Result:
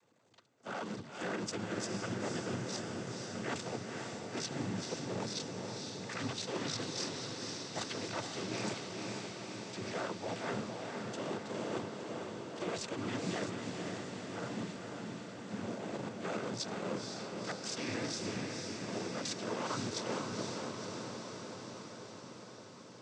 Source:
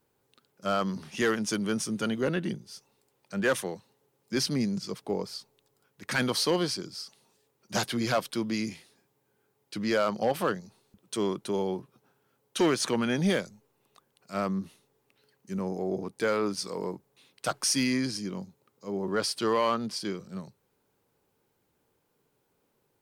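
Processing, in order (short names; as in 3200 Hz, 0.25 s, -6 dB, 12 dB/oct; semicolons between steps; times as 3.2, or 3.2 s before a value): cycle switcher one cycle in 2, muted; reverse; compressor 6:1, threshold -43 dBFS, peak gain reduction 20.5 dB; reverse; short-mantissa float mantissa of 2-bit; noise vocoder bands 16; diffused feedback echo 0.499 s, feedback 72%, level -3.5 dB; gain +7 dB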